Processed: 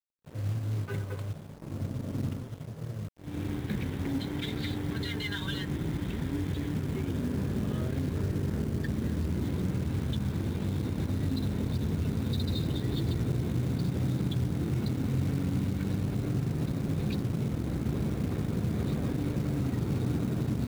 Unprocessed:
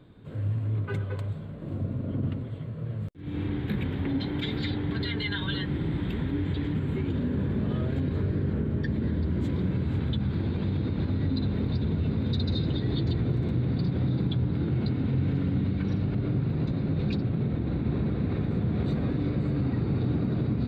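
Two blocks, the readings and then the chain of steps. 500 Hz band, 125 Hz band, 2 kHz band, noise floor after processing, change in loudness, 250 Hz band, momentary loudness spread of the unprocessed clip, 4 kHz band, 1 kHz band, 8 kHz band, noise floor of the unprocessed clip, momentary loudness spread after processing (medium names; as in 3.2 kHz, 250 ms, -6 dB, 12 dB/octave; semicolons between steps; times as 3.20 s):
-3.0 dB, -3.0 dB, -2.5 dB, -41 dBFS, -3.0 dB, -3.0 dB, 5 LU, -2.5 dB, -1.5 dB, no reading, -36 dBFS, 5 LU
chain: companded quantiser 6-bit; crossover distortion -43 dBFS; trim -2 dB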